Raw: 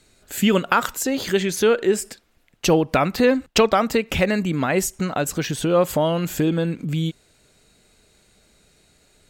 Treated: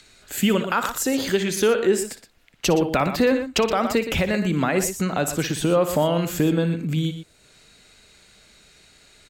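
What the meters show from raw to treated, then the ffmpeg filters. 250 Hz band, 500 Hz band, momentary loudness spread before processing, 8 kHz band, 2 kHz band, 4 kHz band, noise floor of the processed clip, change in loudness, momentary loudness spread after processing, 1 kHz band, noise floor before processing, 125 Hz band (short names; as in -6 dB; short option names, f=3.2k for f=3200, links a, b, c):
-0.5 dB, -1.5 dB, 7 LU, 0.0 dB, -1.5 dB, -1.0 dB, -57 dBFS, -1.5 dB, 5 LU, -2.5 dB, -59 dBFS, 0.0 dB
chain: -filter_complex "[0:a]acrossover=split=190|1100|6500[a][b][c][d];[c]acompressor=mode=upward:threshold=-46dB:ratio=2.5[e];[a][b][e][d]amix=inputs=4:normalize=0,aecho=1:1:59|119:0.224|0.266,alimiter=limit=-9.5dB:level=0:latency=1:release=158"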